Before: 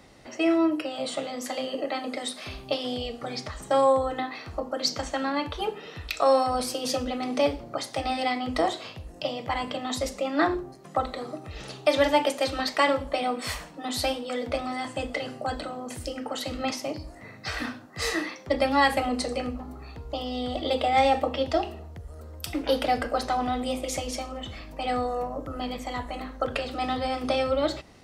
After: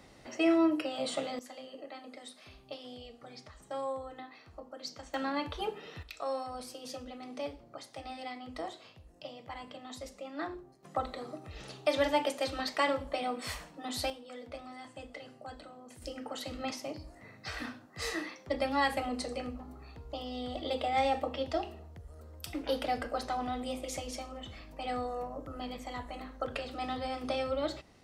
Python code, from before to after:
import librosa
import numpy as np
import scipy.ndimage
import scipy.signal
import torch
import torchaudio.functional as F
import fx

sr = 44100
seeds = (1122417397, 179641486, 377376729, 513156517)

y = fx.gain(x, sr, db=fx.steps((0.0, -3.5), (1.39, -16.0), (5.14, -6.0), (6.03, -15.0), (10.83, -7.0), (14.1, -15.5), (16.02, -8.0)))